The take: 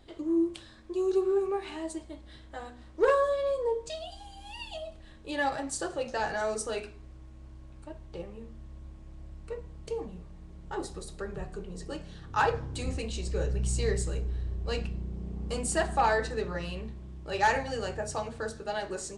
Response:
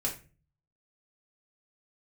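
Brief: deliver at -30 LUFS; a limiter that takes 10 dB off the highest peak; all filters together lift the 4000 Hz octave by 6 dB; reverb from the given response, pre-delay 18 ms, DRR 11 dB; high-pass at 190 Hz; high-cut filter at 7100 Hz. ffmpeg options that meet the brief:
-filter_complex "[0:a]highpass=190,lowpass=7.1k,equalizer=f=4k:t=o:g=8,alimiter=limit=-22dB:level=0:latency=1,asplit=2[a][b];[1:a]atrim=start_sample=2205,adelay=18[c];[b][c]afir=irnorm=-1:irlink=0,volume=-15dB[d];[a][d]amix=inputs=2:normalize=0,volume=3.5dB"

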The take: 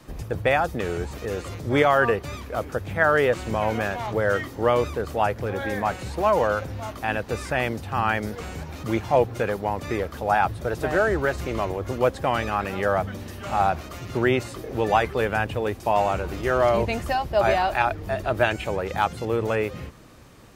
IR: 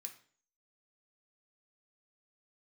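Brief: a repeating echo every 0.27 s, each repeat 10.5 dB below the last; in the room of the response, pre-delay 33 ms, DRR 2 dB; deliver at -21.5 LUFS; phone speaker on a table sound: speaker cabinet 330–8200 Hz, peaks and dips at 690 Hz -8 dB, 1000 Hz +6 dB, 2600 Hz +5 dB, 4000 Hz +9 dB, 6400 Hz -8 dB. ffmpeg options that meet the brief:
-filter_complex "[0:a]aecho=1:1:270|540|810:0.299|0.0896|0.0269,asplit=2[a][b];[1:a]atrim=start_sample=2205,adelay=33[c];[b][c]afir=irnorm=-1:irlink=0,volume=4.5dB[d];[a][d]amix=inputs=2:normalize=0,highpass=f=330:w=0.5412,highpass=f=330:w=1.3066,equalizer=f=690:t=q:w=4:g=-8,equalizer=f=1k:t=q:w=4:g=6,equalizer=f=2.6k:t=q:w=4:g=5,equalizer=f=4k:t=q:w=4:g=9,equalizer=f=6.4k:t=q:w=4:g=-8,lowpass=f=8.2k:w=0.5412,lowpass=f=8.2k:w=1.3066,volume=1.5dB"

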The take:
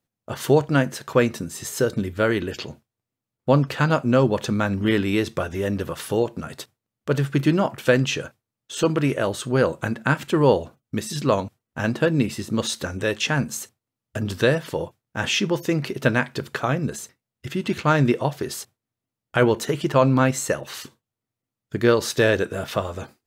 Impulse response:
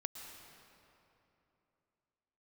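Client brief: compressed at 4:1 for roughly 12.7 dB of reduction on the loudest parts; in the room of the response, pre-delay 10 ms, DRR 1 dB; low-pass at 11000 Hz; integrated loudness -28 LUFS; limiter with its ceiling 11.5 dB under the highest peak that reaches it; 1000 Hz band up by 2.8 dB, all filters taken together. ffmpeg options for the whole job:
-filter_complex "[0:a]lowpass=11k,equalizer=f=1k:t=o:g=3.5,acompressor=threshold=-27dB:ratio=4,alimiter=limit=-21dB:level=0:latency=1,asplit=2[a][b];[1:a]atrim=start_sample=2205,adelay=10[c];[b][c]afir=irnorm=-1:irlink=0,volume=0.5dB[d];[a][d]amix=inputs=2:normalize=0,volume=3dB"

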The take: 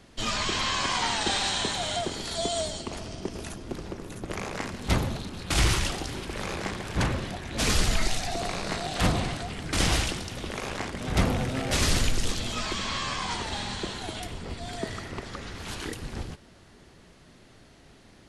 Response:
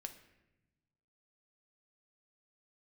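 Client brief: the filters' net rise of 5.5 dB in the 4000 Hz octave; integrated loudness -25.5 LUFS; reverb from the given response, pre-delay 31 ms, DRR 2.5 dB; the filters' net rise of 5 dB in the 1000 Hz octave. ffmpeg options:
-filter_complex "[0:a]equalizer=f=1k:t=o:g=6,equalizer=f=4k:t=o:g=6.5,asplit=2[a][b];[1:a]atrim=start_sample=2205,adelay=31[c];[b][c]afir=irnorm=-1:irlink=0,volume=1.5dB[d];[a][d]amix=inputs=2:normalize=0,volume=-1.5dB"

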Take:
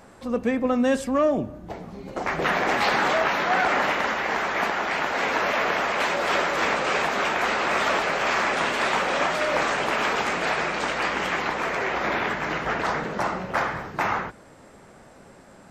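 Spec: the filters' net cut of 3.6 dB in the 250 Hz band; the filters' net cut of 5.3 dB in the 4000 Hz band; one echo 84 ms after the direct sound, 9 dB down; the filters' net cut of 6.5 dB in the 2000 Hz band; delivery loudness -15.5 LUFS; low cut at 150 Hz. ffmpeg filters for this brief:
-af "highpass=150,equalizer=f=250:t=o:g=-3.5,equalizer=f=2k:t=o:g=-7.5,equalizer=f=4k:t=o:g=-4,aecho=1:1:84:0.355,volume=11dB"

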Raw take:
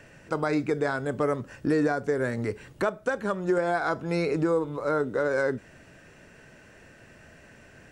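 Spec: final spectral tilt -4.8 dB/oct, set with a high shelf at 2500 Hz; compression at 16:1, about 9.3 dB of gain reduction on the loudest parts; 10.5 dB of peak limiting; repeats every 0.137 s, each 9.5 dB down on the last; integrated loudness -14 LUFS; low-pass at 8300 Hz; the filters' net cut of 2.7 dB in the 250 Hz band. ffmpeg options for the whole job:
-af "lowpass=8.3k,equalizer=f=250:t=o:g=-4,highshelf=f=2.5k:g=9,acompressor=threshold=-30dB:ratio=16,alimiter=level_in=4dB:limit=-24dB:level=0:latency=1,volume=-4dB,aecho=1:1:137|274|411|548:0.335|0.111|0.0365|0.012,volume=24dB"

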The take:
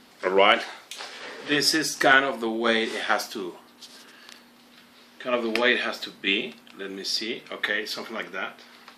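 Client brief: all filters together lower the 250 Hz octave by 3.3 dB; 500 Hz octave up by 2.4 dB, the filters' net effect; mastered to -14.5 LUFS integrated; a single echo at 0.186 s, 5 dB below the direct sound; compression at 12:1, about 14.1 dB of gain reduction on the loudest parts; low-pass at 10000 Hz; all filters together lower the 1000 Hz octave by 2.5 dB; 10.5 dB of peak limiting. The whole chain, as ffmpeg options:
-af "lowpass=10k,equalizer=f=250:t=o:g=-7.5,equalizer=f=500:t=o:g=6.5,equalizer=f=1k:t=o:g=-6,acompressor=threshold=-26dB:ratio=12,alimiter=limit=-22dB:level=0:latency=1,aecho=1:1:186:0.562,volume=18dB"

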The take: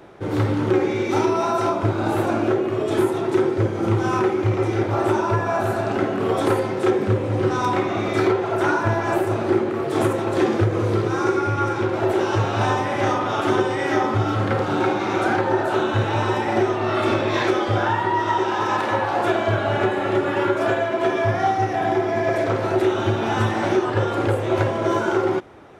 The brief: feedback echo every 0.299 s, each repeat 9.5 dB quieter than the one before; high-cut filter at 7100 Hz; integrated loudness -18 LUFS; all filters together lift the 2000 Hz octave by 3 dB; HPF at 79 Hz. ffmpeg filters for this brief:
-af "highpass=79,lowpass=7.1k,equalizer=f=2k:t=o:g=4,aecho=1:1:299|598|897|1196:0.335|0.111|0.0365|0.012,volume=2.5dB"

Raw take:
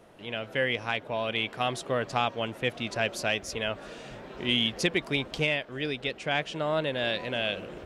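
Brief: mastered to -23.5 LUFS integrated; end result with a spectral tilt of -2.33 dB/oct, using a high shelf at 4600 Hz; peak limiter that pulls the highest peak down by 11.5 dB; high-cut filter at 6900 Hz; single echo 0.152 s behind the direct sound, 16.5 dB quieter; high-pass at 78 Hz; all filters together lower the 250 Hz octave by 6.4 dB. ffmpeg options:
-af "highpass=78,lowpass=6.9k,equalizer=f=250:t=o:g=-8.5,highshelf=f=4.6k:g=-8.5,alimiter=level_in=1.5dB:limit=-24dB:level=0:latency=1,volume=-1.5dB,aecho=1:1:152:0.15,volume=14dB"

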